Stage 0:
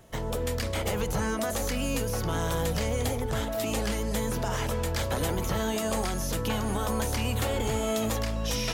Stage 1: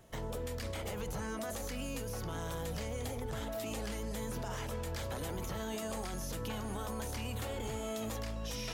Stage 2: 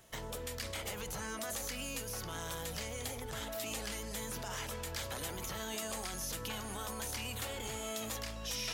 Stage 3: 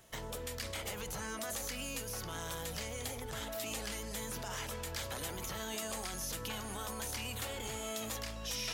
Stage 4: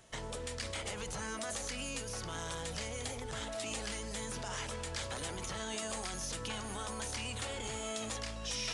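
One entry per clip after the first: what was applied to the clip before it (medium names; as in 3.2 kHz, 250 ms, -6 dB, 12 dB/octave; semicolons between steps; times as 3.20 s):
peak limiter -25.5 dBFS, peak gain reduction 6.5 dB; trim -5.5 dB
tilt shelf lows -5.5 dB, about 1.1 kHz
no audible change
short-mantissa float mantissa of 2-bit; resampled via 22.05 kHz; trim +1 dB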